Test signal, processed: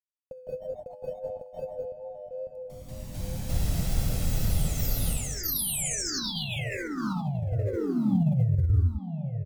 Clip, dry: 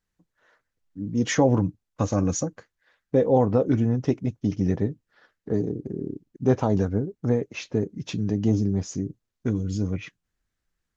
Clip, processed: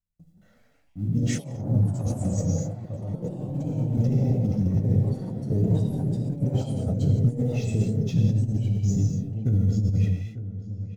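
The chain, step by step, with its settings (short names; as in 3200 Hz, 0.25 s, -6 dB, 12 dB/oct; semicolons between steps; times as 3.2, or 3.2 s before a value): G.711 law mismatch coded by mu; gate with hold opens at -50 dBFS; dynamic EQ 600 Hz, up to +4 dB, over -33 dBFS, Q 0.95; comb 1.5 ms, depth 61%; on a send: darkening echo 0.895 s, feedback 35%, low-pass 2900 Hz, level -15.5 dB; on the sum: non-linear reverb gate 0.29 s flat, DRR 1 dB; negative-ratio compressor -21 dBFS, ratio -0.5; echoes that change speed 0.207 s, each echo +3 st, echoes 3, each echo -6 dB; wow and flutter 26 cents; EQ curve 150 Hz 0 dB, 1200 Hz -20 dB, 7100 Hz -11 dB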